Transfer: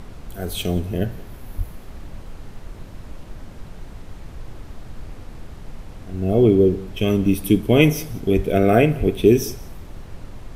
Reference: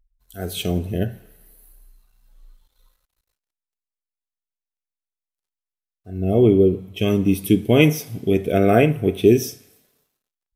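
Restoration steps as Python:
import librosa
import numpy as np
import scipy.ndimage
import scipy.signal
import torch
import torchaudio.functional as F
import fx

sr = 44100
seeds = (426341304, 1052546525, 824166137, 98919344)

y = fx.highpass(x, sr, hz=140.0, slope=24, at=(1.57, 1.69), fade=0.02)
y = fx.highpass(y, sr, hz=140.0, slope=24, at=(8.35, 8.47), fade=0.02)
y = fx.highpass(y, sr, hz=140.0, slope=24, at=(8.99, 9.11), fade=0.02)
y = fx.noise_reduce(y, sr, print_start_s=2.59, print_end_s=3.09, reduce_db=30.0)
y = fx.fix_echo_inverse(y, sr, delay_ms=180, level_db=-22.5)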